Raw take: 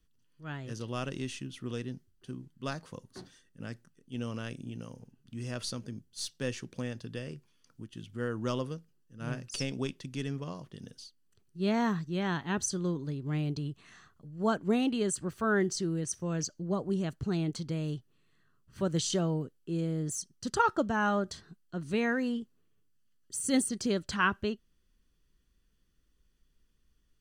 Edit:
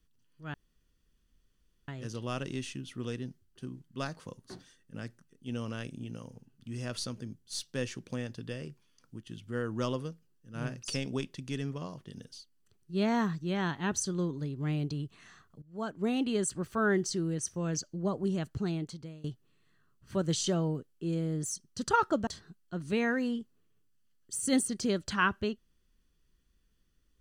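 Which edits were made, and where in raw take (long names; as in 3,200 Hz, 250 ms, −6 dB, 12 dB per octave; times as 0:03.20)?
0:00.54: splice in room tone 1.34 s
0:14.28–0:14.97: fade in, from −17.5 dB
0:17.21–0:17.90: fade out, to −21.5 dB
0:20.93–0:21.28: remove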